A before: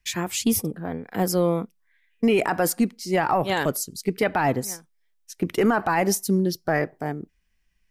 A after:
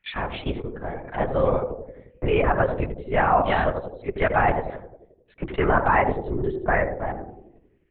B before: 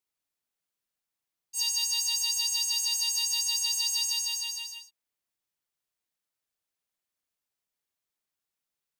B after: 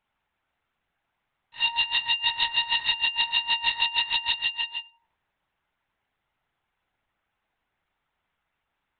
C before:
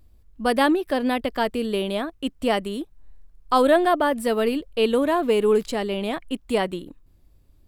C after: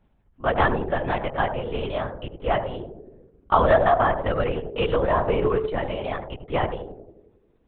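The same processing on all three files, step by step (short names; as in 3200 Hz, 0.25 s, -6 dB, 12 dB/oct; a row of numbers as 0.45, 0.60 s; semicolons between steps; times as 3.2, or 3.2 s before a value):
three-band isolator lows -13 dB, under 460 Hz, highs -13 dB, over 2500 Hz; narrowing echo 88 ms, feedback 64%, band-pass 370 Hz, level -5 dB; LPC vocoder at 8 kHz whisper; match loudness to -24 LUFS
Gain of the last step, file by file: +4.0, +18.5, +1.5 dB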